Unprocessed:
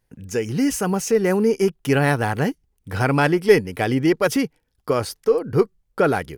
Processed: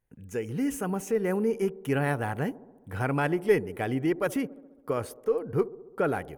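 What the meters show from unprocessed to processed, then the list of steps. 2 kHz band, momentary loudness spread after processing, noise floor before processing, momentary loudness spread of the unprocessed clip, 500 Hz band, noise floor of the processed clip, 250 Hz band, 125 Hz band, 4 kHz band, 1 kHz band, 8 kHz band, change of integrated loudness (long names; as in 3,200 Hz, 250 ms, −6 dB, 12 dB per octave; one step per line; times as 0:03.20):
−9.5 dB, 8 LU, −71 dBFS, 8 LU, −8.5 dB, −56 dBFS, −8.5 dB, −8.5 dB, −14.5 dB, −8.5 dB, −12.5 dB, −8.5 dB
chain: parametric band 4,900 Hz −12.5 dB 0.81 octaves
on a send: delay with a band-pass on its return 68 ms, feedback 69%, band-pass 410 Hz, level −17 dB
on the sum: level −8.5 dB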